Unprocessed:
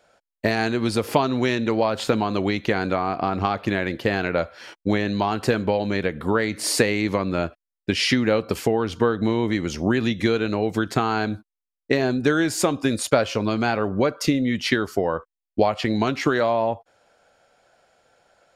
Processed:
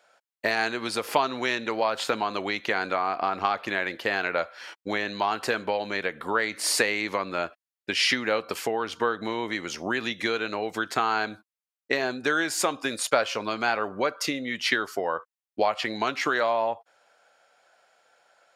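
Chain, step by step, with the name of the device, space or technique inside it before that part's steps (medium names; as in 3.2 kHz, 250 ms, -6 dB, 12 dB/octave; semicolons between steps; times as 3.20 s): filter by subtraction (in parallel: low-pass 1.2 kHz 12 dB/octave + polarity flip); on the sum: trim -1.5 dB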